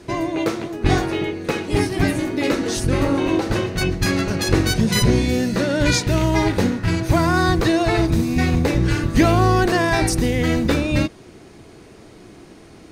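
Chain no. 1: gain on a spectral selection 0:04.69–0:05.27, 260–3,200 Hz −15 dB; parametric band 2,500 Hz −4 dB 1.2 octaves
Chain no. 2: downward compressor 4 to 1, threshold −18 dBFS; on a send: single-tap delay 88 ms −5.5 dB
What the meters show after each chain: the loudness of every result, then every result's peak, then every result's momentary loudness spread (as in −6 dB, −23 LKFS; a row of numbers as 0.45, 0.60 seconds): −20.0, −22.0 LKFS; −4.0, −7.0 dBFS; 6, 3 LU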